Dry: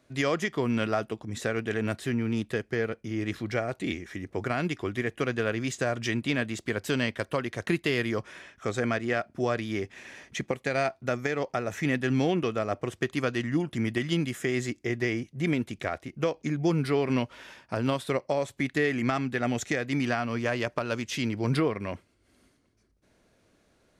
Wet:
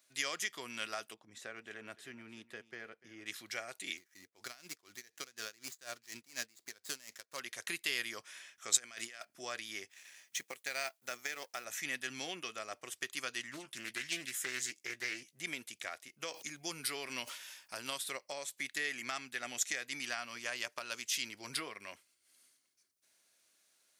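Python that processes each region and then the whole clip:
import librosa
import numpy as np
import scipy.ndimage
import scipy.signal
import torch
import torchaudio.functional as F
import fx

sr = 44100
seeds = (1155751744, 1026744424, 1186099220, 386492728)

y = fx.chain(x, sr, fx.lowpass(hz=1100.0, slope=6),
    fx.echo_single(ms=294, db=-18.5), at=(1.14, 3.26))
y = fx.chain(y, sr, fx.median_filter(points=15),
    fx.dynamic_eq(hz=5500.0, q=0.77, threshold_db=-53.0, ratio=4.0, max_db=6),
    fx.tremolo_db(hz=4.1, depth_db=21), at=(3.97, 7.4))
y = fx.chain(y, sr, fx.highpass(hz=50.0, slope=12),
    fx.high_shelf(hz=3000.0, db=8.5),
    fx.over_compress(threshold_db=-33.0, ratio=-0.5), at=(8.72, 9.25))
y = fx.chain(y, sr, fx.law_mismatch(coded='A'),
    fx.low_shelf(hz=85.0, db=-8.5), at=(9.9, 11.65))
y = fx.chain(y, sr, fx.doubler(ms=15.0, db=-10),
    fx.doppler_dist(depth_ms=0.34), at=(13.51, 15.32))
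y = fx.chain(y, sr, fx.high_shelf(hz=7000.0, db=6.5),
    fx.sustainer(db_per_s=120.0), at=(16.28, 17.98))
y = np.diff(y, prepend=0.0)
y = fx.notch(y, sr, hz=460.0, q=15.0)
y = F.gain(torch.from_numpy(y), 4.5).numpy()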